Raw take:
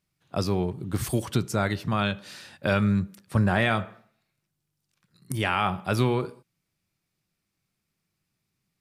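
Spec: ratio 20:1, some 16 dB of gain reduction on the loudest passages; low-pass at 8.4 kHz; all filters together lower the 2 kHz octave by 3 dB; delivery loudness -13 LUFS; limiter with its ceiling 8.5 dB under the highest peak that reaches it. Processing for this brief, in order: low-pass 8.4 kHz; peaking EQ 2 kHz -4 dB; compression 20:1, threshold -34 dBFS; trim +29 dB; peak limiter 0 dBFS

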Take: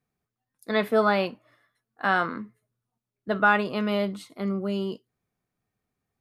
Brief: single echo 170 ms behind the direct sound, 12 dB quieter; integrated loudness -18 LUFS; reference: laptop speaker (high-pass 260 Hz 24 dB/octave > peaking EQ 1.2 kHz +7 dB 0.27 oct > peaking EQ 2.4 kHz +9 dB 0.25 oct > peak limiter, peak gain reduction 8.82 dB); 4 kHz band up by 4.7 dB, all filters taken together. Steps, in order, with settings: high-pass 260 Hz 24 dB/octave; peaking EQ 1.2 kHz +7 dB 0.27 oct; peaking EQ 2.4 kHz +9 dB 0.25 oct; peaking EQ 4 kHz +5 dB; delay 170 ms -12 dB; trim +9.5 dB; peak limiter -4.5 dBFS

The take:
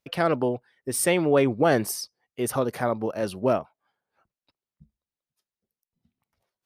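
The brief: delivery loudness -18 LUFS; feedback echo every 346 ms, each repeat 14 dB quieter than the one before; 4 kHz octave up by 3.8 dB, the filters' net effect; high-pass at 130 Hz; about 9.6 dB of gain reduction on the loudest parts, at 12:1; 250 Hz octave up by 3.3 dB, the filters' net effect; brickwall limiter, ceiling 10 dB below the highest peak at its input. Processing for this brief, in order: high-pass 130 Hz; peaking EQ 250 Hz +4.5 dB; peaking EQ 4 kHz +5.5 dB; compression 12:1, threshold -23 dBFS; peak limiter -22 dBFS; feedback delay 346 ms, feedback 20%, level -14 dB; trim +14.5 dB

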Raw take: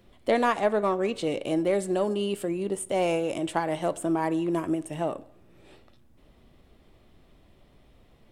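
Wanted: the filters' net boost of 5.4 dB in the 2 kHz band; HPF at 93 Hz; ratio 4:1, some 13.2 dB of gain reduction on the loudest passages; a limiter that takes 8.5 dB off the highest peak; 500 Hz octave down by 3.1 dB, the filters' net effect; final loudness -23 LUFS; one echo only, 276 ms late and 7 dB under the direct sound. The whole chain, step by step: high-pass 93 Hz; peaking EQ 500 Hz -4.5 dB; peaking EQ 2 kHz +7 dB; compression 4:1, threshold -35 dBFS; peak limiter -28.5 dBFS; delay 276 ms -7 dB; trim +15.5 dB

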